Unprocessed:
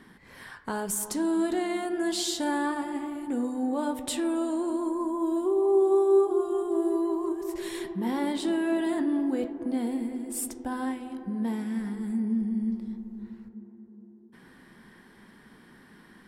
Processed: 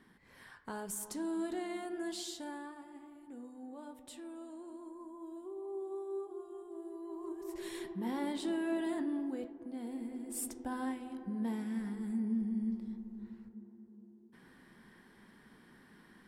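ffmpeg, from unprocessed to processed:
-af "volume=2.99,afade=t=out:st=1.97:d=0.74:silence=0.354813,afade=t=in:st=7:d=0.66:silence=0.266073,afade=t=out:st=8.91:d=0.8:silence=0.446684,afade=t=in:st=9.71:d=0.74:silence=0.375837"

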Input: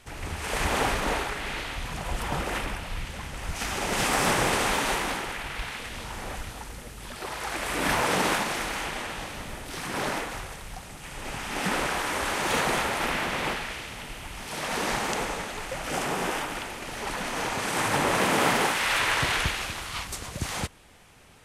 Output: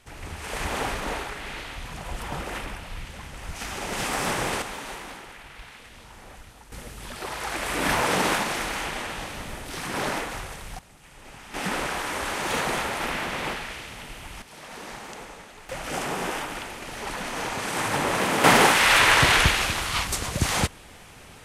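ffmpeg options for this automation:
-af "asetnsamples=n=441:p=0,asendcmd='4.62 volume volume -10dB;6.72 volume volume 1.5dB;10.79 volume volume -10dB;11.54 volume volume -1dB;14.42 volume volume -11dB;15.69 volume volume -0.5dB;18.44 volume volume 7.5dB',volume=0.708"

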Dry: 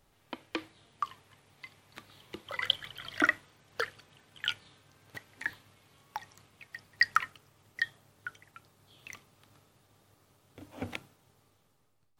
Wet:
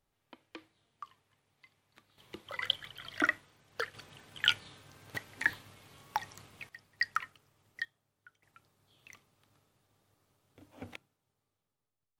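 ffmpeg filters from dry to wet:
-af "asetnsamples=n=441:p=0,asendcmd='2.18 volume volume -3dB;3.94 volume volume 5.5dB;6.69 volume volume -6.5dB;7.85 volume volume -18dB;8.43 volume volume -8dB;10.96 volume volume -17dB',volume=0.224"

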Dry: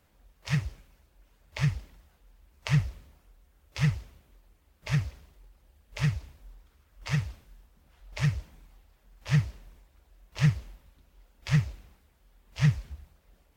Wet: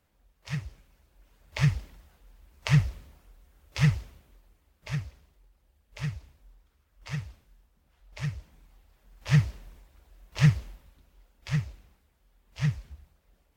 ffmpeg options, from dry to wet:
-af "volume=3.98,afade=t=in:st=0.66:d=0.92:silence=0.375837,afade=t=out:st=3.96:d=1.07:silence=0.354813,afade=t=in:st=8.38:d=1.03:silence=0.354813,afade=t=out:st=10.56:d=0.95:silence=0.446684"

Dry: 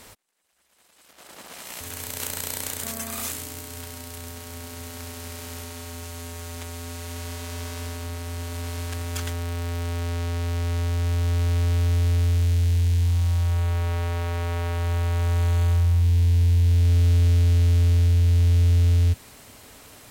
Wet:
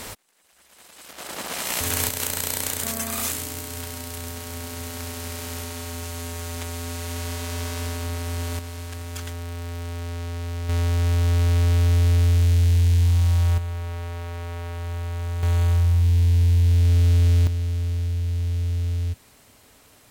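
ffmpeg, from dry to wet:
-af "asetnsamples=n=441:p=0,asendcmd='2.09 volume volume 4dB;8.59 volume volume -3.5dB;10.69 volume volume 3dB;13.58 volume volume -5.5dB;15.43 volume volume 1dB;17.47 volume volume -6.5dB',volume=3.55"

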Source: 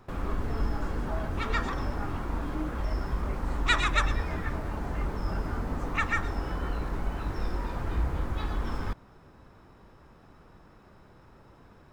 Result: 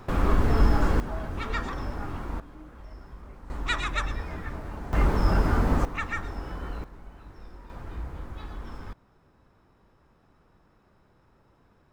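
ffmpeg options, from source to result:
-af "asetnsamples=n=441:p=0,asendcmd='1 volume volume -1.5dB;2.4 volume volume -14dB;3.5 volume volume -3.5dB;4.93 volume volume 9dB;5.85 volume volume -3.5dB;6.84 volume volume -14.5dB;7.7 volume volume -7.5dB',volume=2.82"

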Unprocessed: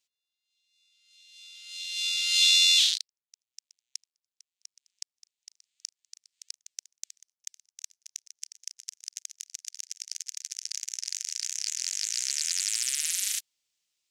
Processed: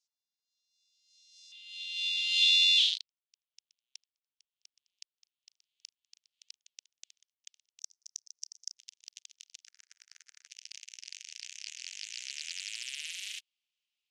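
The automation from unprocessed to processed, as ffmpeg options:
-af "asetnsamples=n=441:p=0,asendcmd='1.52 bandpass f 3100;7.8 bandpass f 5400;8.78 bandpass f 3200;9.67 bandpass f 1500;10.47 bandpass f 2800',bandpass=f=5500:t=q:w=2.8:csg=0"

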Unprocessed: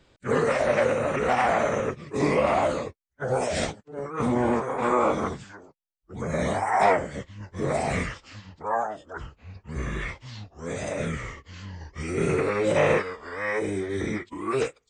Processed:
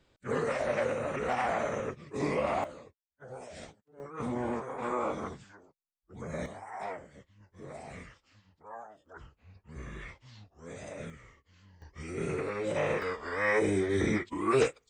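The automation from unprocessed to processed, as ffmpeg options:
-af "asetnsamples=n=441:p=0,asendcmd='2.64 volume volume -19.5dB;4 volume volume -10dB;6.46 volume volume -19dB;9.06 volume volume -12.5dB;11.1 volume volume -19.5dB;11.82 volume volume -9.5dB;13.02 volume volume 0.5dB',volume=0.398"

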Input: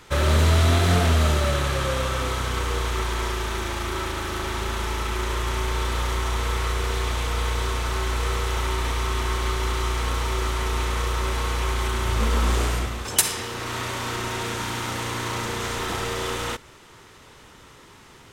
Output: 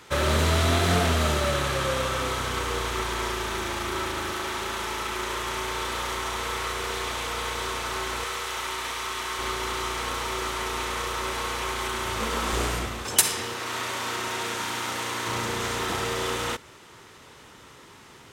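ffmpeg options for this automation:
-af "asetnsamples=n=441:p=0,asendcmd='4.32 highpass f 360;8.24 highpass f 910;9.39 highpass f 330;12.53 highpass f 130;13.54 highpass f 400;15.27 highpass f 100',highpass=f=150:p=1"

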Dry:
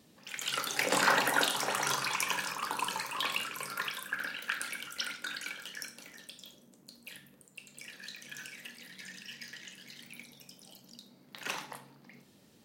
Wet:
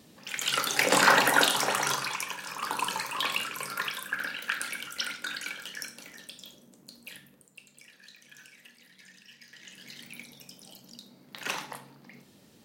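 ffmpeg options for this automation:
-af "volume=22.4,afade=t=out:st=1.58:d=0.81:silence=0.237137,afade=t=in:st=2.39:d=0.3:silence=0.316228,afade=t=out:st=7:d=0.88:silence=0.298538,afade=t=in:st=9.49:d=0.41:silence=0.281838"

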